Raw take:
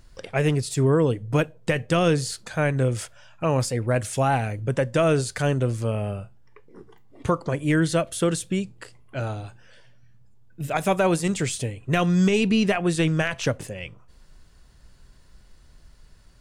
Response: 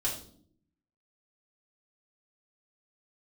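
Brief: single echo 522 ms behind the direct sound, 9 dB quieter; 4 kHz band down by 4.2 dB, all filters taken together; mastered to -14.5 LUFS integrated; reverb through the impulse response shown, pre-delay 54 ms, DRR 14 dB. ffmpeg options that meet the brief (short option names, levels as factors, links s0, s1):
-filter_complex "[0:a]equalizer=f=4000:t=o:g=-6,aecho=1:1:522:0.355,asplit=2[s0][s1];[1:a]atrim=start_sample=2205,adelay=54[s2];[s1][s2]afir=irnorm=-1:irlink=0,volume=0.112[s3];[s0][s3]amix=inputs=2:normalize=0,volume=2.82"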